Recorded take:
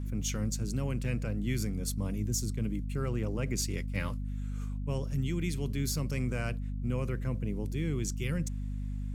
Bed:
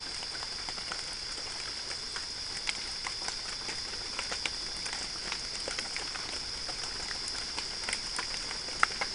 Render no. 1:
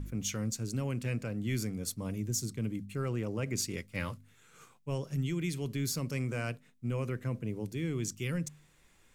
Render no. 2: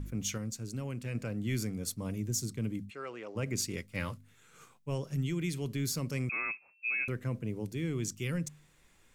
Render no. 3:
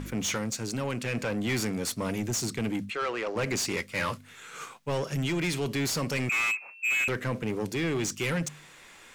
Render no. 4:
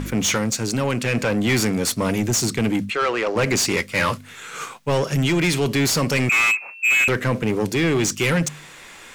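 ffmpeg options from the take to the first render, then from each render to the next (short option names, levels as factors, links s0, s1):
-af "bandreject=f=50:t=h:w=4,bandreject=f=100:t=h:w=4,bandreject=f=150:t=h:w=4,bandreject=f=200:t=h:w=4,bandreject=f=250:t=h:w=4"
-filter_complex "[0:a]asplit=3[s0][s1][s2];[s0]afade=t=out:st=2.89:d=0.02[s3];[s1]highpass=530,lowpass=4800,afade=t=in:st=2.89:d=0.02,afade=t=out:st=3.35:d=0.02[s4];[s2]afade=t=in:st=3.35:d=0.02[s5];[s3][s4][s5]amix=inputs=3:normalize=0,asettb=1/sr,asplit=3[s6][s7][s8];[s6]atrim=end=6.294[s9];[s7]atrim=start=6.29:end=7.08,asetpts=PTS-STARTPTS,afade=t=in:d=0.004:c=qsin,afade=t=out:st=0.786:d=0.004:c=qsin,lowpass=f=2300:t=q:w=0.5098,lowpass=f=2300:t=q:w=0.6013,lowpass=f=2300:t=q:w=0.9,lowpass=f=2300:t=q:w=2.563,afreqshift=-2700[s10];[s8]atrim=start=7.076[s11];[s9][s10]acrossfade=d=0.004:c1=hsin:c2=qsin[s12];[s12][s11]acrossfade=d=0.004:c1=qsin:c2=hsin,asplit=3[s13][s14][s15];[s13]atrim=end=0.382[s16];[s14]atrim=start=0.378:end=1.152,asetpts=PTS-STARTPTS,volume=0.631[s17];[s15]atrim=start=1.148[s18];[s16][s17]acrossfade=d=0.004:c1=hsin:c2=hsin[s19];[s19][s18]acrossfade=d=0.004:c1=hsin:c2=hsin"
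-filter_complex "[0:a]asplit=2[s0][s1];[s1]highpass=f=720:p=1,volume=12.6,asoftclip=type=tanh:threshold=0.0891[s2];[s0][s2]amix=inputs=2:normalize=0,lowpass=f=4400:p=1,volume=0.501,asplit=2[s3][s4];[s4]volume=42.2,asoftclip=hard,volume=0.0237,volume=0.316[s5];[s3][s5]amix=inputs=2:normalize=0"
-af "volume=2.99"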